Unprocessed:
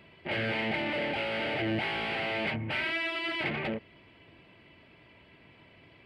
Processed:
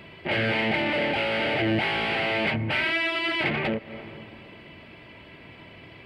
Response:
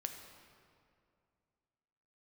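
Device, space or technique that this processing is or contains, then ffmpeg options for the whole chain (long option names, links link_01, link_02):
ducked reverb: -filter_complex "[0:a]asplit=3[link_01][link_02][link_03];[1:a]atrim=start_sample=2205[link_04];[link_02][link_04]afir=irnorm=-1:irlink=0[link_05];[link_03]apad=whole_len=267192[link_06];[link_05][link_06]sidechaincompress=threshold=-46dB:ratio=8:attack=16:release=183,volume=-0.5dB[link_07];[link_01][link_07]amix=inputs=2:normalize=0,volume=5.5dB"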